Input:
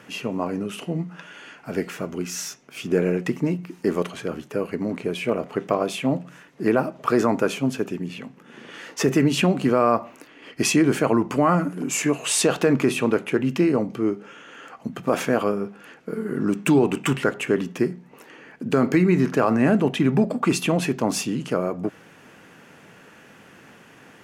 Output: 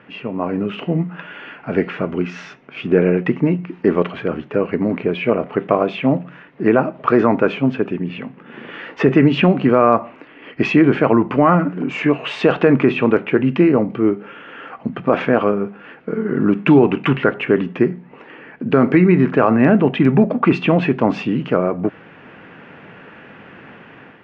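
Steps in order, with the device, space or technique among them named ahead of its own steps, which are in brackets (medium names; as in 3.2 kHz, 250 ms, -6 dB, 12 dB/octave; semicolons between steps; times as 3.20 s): action camera in a waterproof case (low-pass 2.9 kHz 24 dB/octave; level rider gain up to 7.5 dB; trim +1 dB; AAC 128 kbps 48 kHz)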